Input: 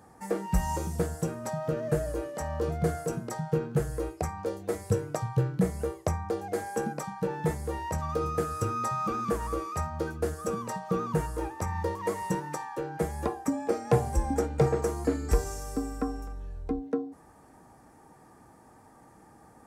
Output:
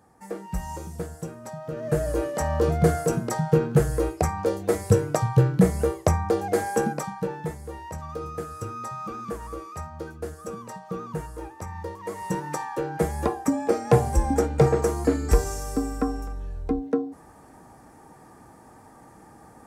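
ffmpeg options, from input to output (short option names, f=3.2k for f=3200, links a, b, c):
-af "volume=17.5dB,afade=t=in:st=1.7:d=0.53:silence=0.251189,afade=t=out:st=6.7:d=0.8:silence=0.251189,afade=t=in:st=12.07:d=0.53:silence=0.334965"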